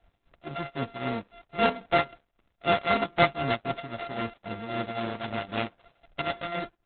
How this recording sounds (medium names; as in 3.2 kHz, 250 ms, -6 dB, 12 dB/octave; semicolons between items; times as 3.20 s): a buzz of ramps at a fixed pitch in blocks of 64 samples; tremolo triangle 3.8 Hz, depth 80%; Opus